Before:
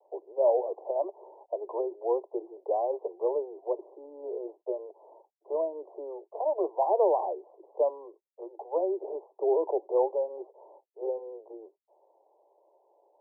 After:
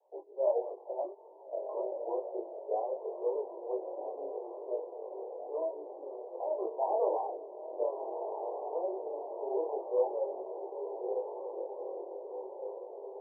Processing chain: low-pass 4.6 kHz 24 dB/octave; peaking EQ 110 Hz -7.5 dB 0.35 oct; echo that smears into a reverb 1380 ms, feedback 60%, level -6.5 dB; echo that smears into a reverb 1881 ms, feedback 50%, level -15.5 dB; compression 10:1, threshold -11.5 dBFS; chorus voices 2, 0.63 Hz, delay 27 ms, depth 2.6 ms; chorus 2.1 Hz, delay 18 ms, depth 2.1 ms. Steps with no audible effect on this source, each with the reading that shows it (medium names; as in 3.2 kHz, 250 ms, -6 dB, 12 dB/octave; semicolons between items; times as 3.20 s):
low-pass 4.6 kHz: input has nothing above 1.1 kHz; peaking EQ 110 Hz: input has nothing below 270 Hz; compression, threshold -11.5 dBFS: peak at its input -14.0 dBFS